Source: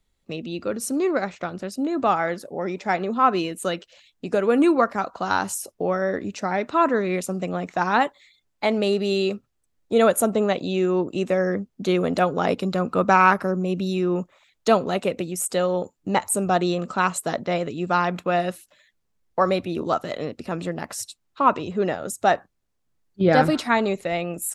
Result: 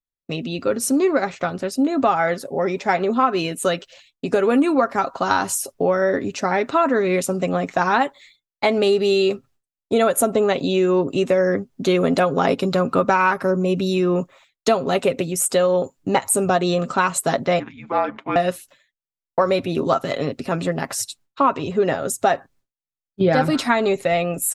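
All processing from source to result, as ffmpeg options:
-filter_complex "[0:a]asettb=1/sr,asplit=3[a][b][c];[a]atrim=end=17.594[d];[b]atrim=start=17.59:end=18.36,asetpts=PTS-STARTPTS,afade=t=in:d=0.004:c=qsin,afade=t=out:st=0.766:d=0.004:c=qsin,aeval=exprs='val(0)*sin(2*PI*85*n/s)':c=same,afreqshift=-310,highpass=350,lowpass=2.3k[e];[c]atrim=start=18.356[f];[d][e]acrossfade=d=0.004:c1=hsin:c2=qsin[g];[g][f]acrossfade=d=0.004:c1=qsin:c2=hsin,agate=range=-33dB:threshold=-49dB:ratio=3:detection=peak,aecho=1:1:7.4:0.45,acompressor=threshold=-19dB:ratio=6,volume=5.5dB"

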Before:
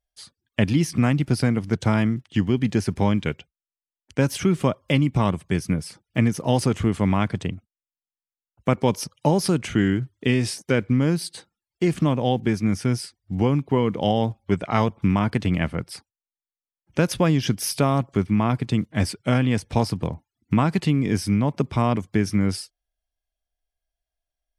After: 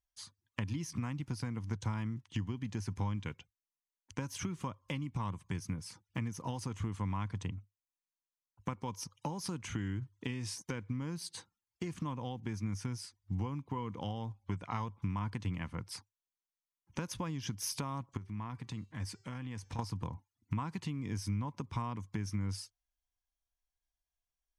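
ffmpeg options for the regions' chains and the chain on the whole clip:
-filter_complex "[0:a]asettb=1/sr,asplit=3[a][b][c];[a]atrim=end=18.174[d];[b]atrim=start=18.17:end=19.79,asetpts=PTS-STARTPTS,afade=t=in:d=0.004:c=qsin,afade=t=out:st=1.616:d=0.004:c=qsin,acompressor=threshold=-36dB:ratio=3:attack=3.2:release=140:knee=1:detection=peak,equalizer=f=1.8k:t=o:w=0.26:g=3.5,bandreject=f=386.8:t=h:w=4,bandreject=f=773.6:t=h:w=4,bandreject=f=1.1604k:t=h:w=4,bandreject=f=1.5472k:t=h:w=4,bandreject=f=1.934k:t=h:w=4,bandreject=f=2.3208k:t=h:w=4,bandreject=f=2.7076k:t=h:w=4,bandreject=f=3.0944k:t=h:w=4,bandreject=f=3.4812k:t=h:w=4,bandreject=f=3.868k:t=h:w=4,bandreject=f=4.2548k:t=h:w=4,bandreject=f=4.6416k:t=h:w=4,bandreject=f=5.0284k:t=h:w=4,bandreject=f=5.4152k:t=h:w=4,bandreject=f=5.802k:t=h:w=4,bandreject=f=6.1888k:t=h:w=4,bandreject=f=6.5756k:t=h:w=4,bandreject=f=6.9624k:t=h:w=4,bandreject=f=7.3492k:t=h:w=4,bandreject=f=7.736k:t=h:w=4,bandreject=f=8.1228k:t=h:w=4[e];[c]atrim=start=19.786[f];[d][e]acrossfade=d=0.004:c1=hsin:c2=qsin[g];[g][f]acrossfade=d=0.004:c1=qsin:c2=hsin,acompressor=threshold=-28dB:ratio=6,equalizer=f=100:t=o:w=0.33:g=9,equalizer=f=400:t=o:w=0.33:g=-6,equalizer=f=630:t=o:w=0.33:g=-9,equalizer=f=1k:t=o:w=0.33:g=10,equalizer=f=6.3k:t=o:w=0.33:g=7,volume=-7.5dB"

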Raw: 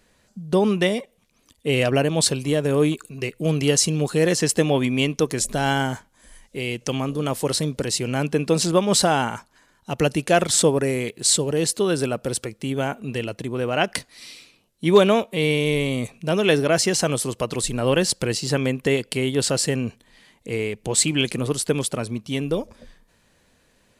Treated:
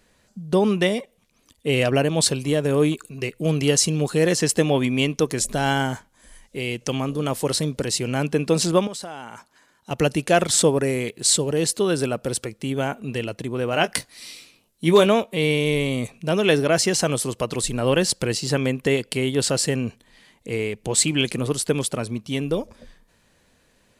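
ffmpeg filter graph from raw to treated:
-filter_complex "[0:a]asettb=1/sr,asplit=3[a][b][c];[a]atrim=end=8.874[d];[b]atrim=start=8.87:end=9.91,asetpts=PTS-STARTPTS,afade=t=in:d=0.004:c=qsin,afade=t=out:st=1.036:d=0.004:c=qsin,highpass=f=200:p=1,acompressor=threshold=-33dB:ratio=4:attack=3.2:release=140:knee=1:detection=peak[e];[c]atrim=start=9.906[f];[d][e]acrossfade=d=0.004:c1=hsin:c2=qsin[g];[g][f]acrossfade=d=0.004:c1=qsin:c2=hsin,asettb=1/sr,asplit=3[h][i][j];[h]atrim=end=13.714[k];[i]atrim=start=13.71:end=15.06,asetpts=PTS-STARTPTS,afade=t=in:d=0.004:c=qsin,afade=t=out:st=1.346:d=0.004:c=qsin,highshelf=f=8.3k:g=7,asplit=2[l][m];[m]adelay=18,volume=-10dB[n];[l][n]amix=inputs=2:normalize=0,atrim=end_sample=59535[o];[j]atrim=start=15.056[p];[k][o]acrossfade=d=0.004:c1=hsin:c2=qsin[q];[q][p]acrossfade=d=0.004:c1=qsin:c2=hsin"

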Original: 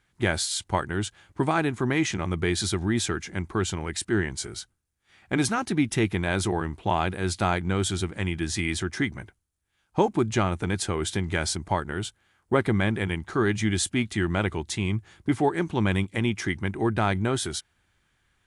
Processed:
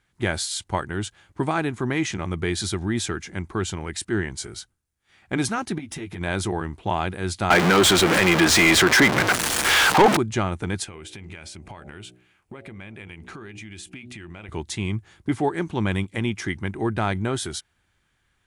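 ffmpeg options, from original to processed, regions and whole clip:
-filter_complex "[0:a]asettb=1/sr,asplit=3[a][b][c];[a]atrim=end=5.784[d];[b]atrim=start=5.78:end=6.21,asetpts=PTS-STARTPTS,afade=t=in:d=0.004:c=qsin,afade=t=out:st=0.426:d=0.004:c=qsin,acompressor=threshold=-31dB:ratio=8:attack=3.2:release=140:knee=1:detection=peak,aeval=exprs='clip(val(0),-1,0.0398)':c=same,asplit=2[e][f];[f]adelay=12,volume=-3.5dB[g];[e][g]amix=inputs=2:normalize=0,atrim=end_sample=18963[h];[c]atrim=start=6.206[i];[d][h]acrossfade=d=0.004:c1=hsin:c2=qsin[j];[j][i]acrossfade=d=0.004:c1=qsin:c2=hsin,asettb=1/sr,asplit=3[k][l][m];[k]atrim=end=7.504[n];[l]atrim=start=7.5:end=10.17,asetpts=PTS-STARTPTS,afade=t=in:d=0.004:c=qsin,afade=t=out:st=2.666:d=0.004:c=qsin,aeval=exprs='val(0)+0.5*0.0668*sgn(val(0))':c=same,highpass=f=120:w=0.5412,highpass=f=120:w=1.3066,asplit=2[o][p];[p]highpass=f=720:p=1,volume=24dB,asoftclip=type=tanh:threshold=-5.5dB[q];[o][q]amix=inputs=2:normalize=0,lowpass=f=3.8k:p=1,volume=-6dB[r];[m]atrim=start=10.166[s];[n][r]acrossfade=d=0.004:c1=hsin:c2=qsin[t];[t][s]acrossfade=d=0.004:c1=qsin:c2=hsin,asettb=1/sr,asplit=3[u][v][w];[u]atrim=end=10.844[x];[v]atrim=start=10.84:end=14.49,asetpts=PTS-STARTPTS,afade=t=in:d=0.004:c=qsin,afade=t=out:st=3.646:d=0.004:c=qsin,equalizer=f=2.5k:w=3.3:g=11,bandreject=f=61.32:t=h:w=4,bandreject=f=122.64:t=h:w=4,bandreject=f=183.96:t=h:w=4,bandreject=f=245.28:t=h:w=4,bandreject=f=306.6:t=h:w=4,bandreject=f=367.92:t=h:w=4,bandreject=f=429.24:t=h:w=4,bandreject=f=490.56:t=h:w=4,bandreject=f=551.88:t=h:w=4,bandreject=f=613.2:t=h:w=4,bandreject=f=674.52:t=h:w=4,bandreject=f=735.84:t=h:w=4,bandreject=f=797.16:t=h:w=4,acompressor=threshold=-35dB:ratio=20:attack=3.2:release=140:knee=1:detection=peak[y];[w]atrim=start=14.486[z];[x][y]acrossfade=d=0.004:c1=hsin:c2=qsin[aa];[aa][z]acrossfade=d=0.004:c1=qsin:c2=hsin"

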